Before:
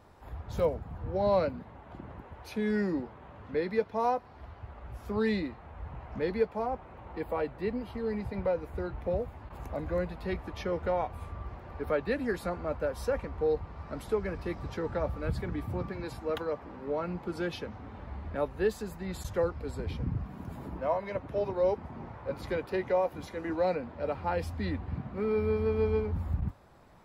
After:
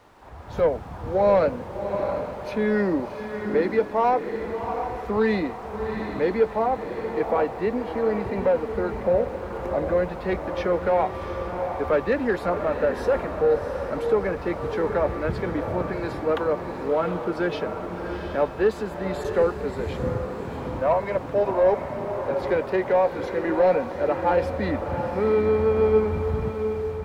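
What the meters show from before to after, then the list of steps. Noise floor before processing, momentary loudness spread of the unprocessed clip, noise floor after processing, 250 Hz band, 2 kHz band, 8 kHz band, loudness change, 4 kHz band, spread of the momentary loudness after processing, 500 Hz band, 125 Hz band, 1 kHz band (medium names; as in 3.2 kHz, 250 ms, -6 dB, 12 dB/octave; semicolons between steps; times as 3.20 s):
-50 dBFS, 14 LU, -35 dBFS, +7.0 dB, +9.0 dB, no reading, +8.5 dB, +5.0 dB, 8 LU, +9.5 dB, +4.0 dB, +10.0 dB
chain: added noise pink -58 dBFS; overdrive pedal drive 14 dB, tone 1 kHz, clips at -16 dBFS; level rider gain up to 6.5 dB; on a send: echo that smears into a reverb 712 ms, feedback 42%, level -7 dB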